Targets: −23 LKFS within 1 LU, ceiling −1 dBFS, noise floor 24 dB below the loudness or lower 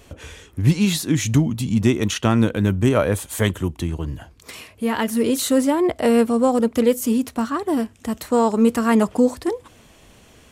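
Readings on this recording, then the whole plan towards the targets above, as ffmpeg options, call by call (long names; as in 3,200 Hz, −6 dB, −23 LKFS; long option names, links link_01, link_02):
integrated loudness −20.0 LKFS; sample peak −4.0 dBFS; target loudness −23.0 LKFS
→ -af "volume=-3dB"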